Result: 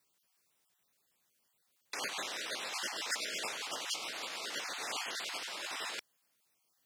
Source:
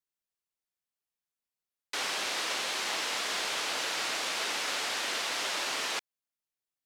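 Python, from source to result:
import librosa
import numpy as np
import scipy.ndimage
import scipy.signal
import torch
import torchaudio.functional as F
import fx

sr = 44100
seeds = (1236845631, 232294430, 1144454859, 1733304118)

y = fx.spec_dropout(x, sr, seeds[0], share_pct=26)
y = scipy.signal.sosfilt(scipy.signal.butter(2, 91.0, 'highpass', fs=sr, output='sos'), y)
y = fx.over_compress(y, sr, threshold_db=-42.0, ratio=-0.5)
y = y * librosa.db_to_amplitude(5.5)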